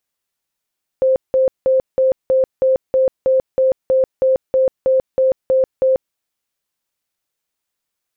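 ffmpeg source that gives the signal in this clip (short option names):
-f lavfi -i "aevalsrc='0.299*sin(2*PI*524*mod(t,0.32))*lt(mod(t,0.32),73/524)':d=5.12:s=44100"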